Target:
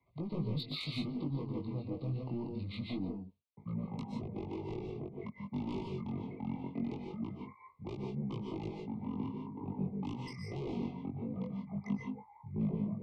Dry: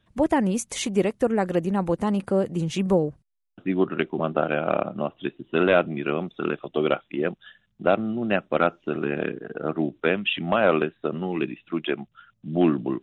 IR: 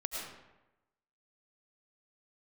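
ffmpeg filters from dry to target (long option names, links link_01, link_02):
-filter_complex "[0:a]highpass=130,acrossover=split=190[link_01][link_02];[link_01]acompressor=threshold=-46dB:ratio=8[link_03];[link_03][link_02]amix=inputs=2:normalize=0,aresample=16000,aresample=44100,asetrate=26990,aresample=44100,atempo=1.63392,asoftclip=type=tanh:threshold=-20.5dB,acrossover=split=230|3000[link_04][link_05][link_06];[link_05]acompressor=threshold=-39dB:ratio=6[link_07];[link_04][link_07][link_06]amix=inputs=3:normalize=0[link_08];[1:a]atrim=start_sample=2205,afade=type=out:start_time=0.18:duration=0.01,atrim=end_sample=8379,asetrate=31752,aresample=44100[link_09];[link_08][link_09]afir=irnorm=-1:irlink=0,flanger=delay=18.5:depth=3.7:speed=0.23,asuperstop=centerf=1600:order=20:qfactor=2.1,volume=-4dB"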